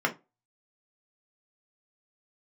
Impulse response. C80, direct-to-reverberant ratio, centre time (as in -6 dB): 26.5 dB, 1.0 dB, 9 ms